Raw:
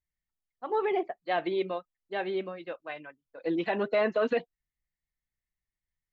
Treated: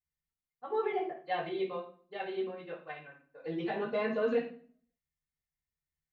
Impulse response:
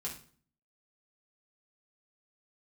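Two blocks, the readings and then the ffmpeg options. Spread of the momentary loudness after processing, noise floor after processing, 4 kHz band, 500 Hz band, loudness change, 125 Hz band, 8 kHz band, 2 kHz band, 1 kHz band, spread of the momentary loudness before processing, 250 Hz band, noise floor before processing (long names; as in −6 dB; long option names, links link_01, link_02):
15 LU, below −85 dBFS, −5.0 dB, −4.0 dB, −4.5 dB, −2.0 dB, can't be measured, −5.5 dB, −4.0 dB, 13 LU, −4.0 dB, below −85 dBFS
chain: -filter_complex "[1:a]atrim=start_sample=2205[link_01];[0:a][link_01]afir=irnorm=-1:irlink=0,volume=-4.5dB"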